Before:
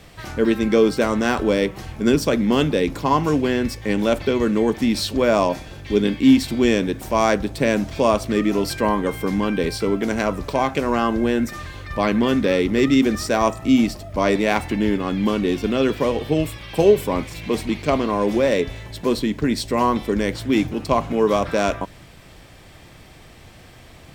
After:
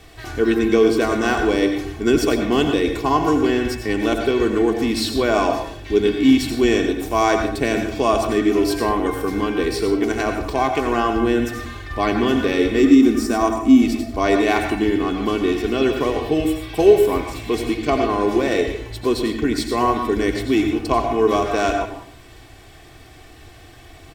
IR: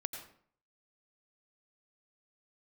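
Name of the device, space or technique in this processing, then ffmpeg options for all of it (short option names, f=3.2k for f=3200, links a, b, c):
microphone above a desk: -filter_complex "[0:a]asettb=1/sr,asplit=3[a][b][c];[a]atrim=end=12.824[d];[b]atrim=start=12.82:end=13.82,asetpts=PTS-STARTPTS,afade=t=in:d=0.004:c=qsin,afade=t=out:st=0.996:d=0.004:c=qsin,equalizer=f=125:t=o:w=1:g=-9,equalizer=f=250:t=o:w=1:g=9,equalizer=f=500:t=o:w=1:g=-6,equalizer=f=2k:t=o:w=1:g=-5,equalizer=f=4k:t=o:w=1:g=-5[e];[c]atrim=start=13.816[f];[d][e]acrossfade=d=0.004:c1=hsin:c2=qsin[g];[g][f]acrossfade=d=0.004:c1=qsin:c2=hsin,aecho=1:1:2.7:0.64[h];[1:a]atrim=start_sample=2205[i];[h][i]afir=irnorm=-1:irlink=0"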